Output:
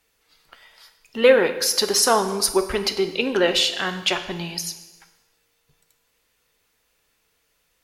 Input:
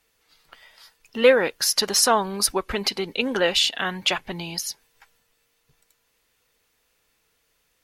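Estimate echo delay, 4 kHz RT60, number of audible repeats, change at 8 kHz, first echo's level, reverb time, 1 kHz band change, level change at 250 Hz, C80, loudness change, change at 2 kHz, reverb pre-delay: no echo, 1.0 s, no echo, +0.5 dB, no echo, 1.1 s, +0.5 dB, +2.5 dB, 12.5 dB, +1.5 dB, +0.5 dB, 6 ms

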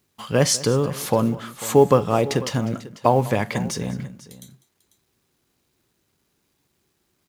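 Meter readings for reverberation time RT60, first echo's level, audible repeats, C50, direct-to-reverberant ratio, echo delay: no reverb, -19.0 dB, 2, no reverb, no reverb, 199 ms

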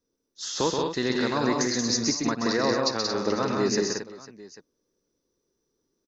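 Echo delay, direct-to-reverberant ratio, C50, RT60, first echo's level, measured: 59 ms, no reverb, no reverb, no reverb, -18.0 dB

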